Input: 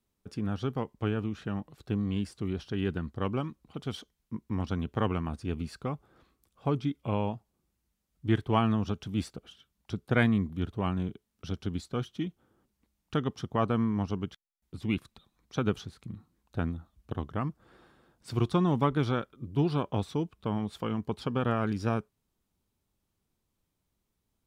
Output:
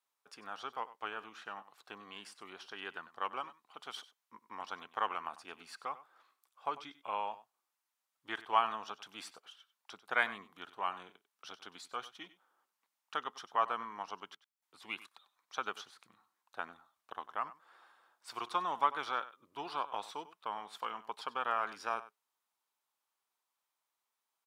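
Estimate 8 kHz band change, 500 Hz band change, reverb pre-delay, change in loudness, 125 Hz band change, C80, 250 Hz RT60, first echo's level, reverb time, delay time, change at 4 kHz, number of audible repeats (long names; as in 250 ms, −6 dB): can't be measured, −12.0 dB, no reverb audible, −7.5 dB, below −35 dB, no reverb audible, no reverb audible, −16.5 dB, no reverb audible, 96 ms, −2.5 dB, 1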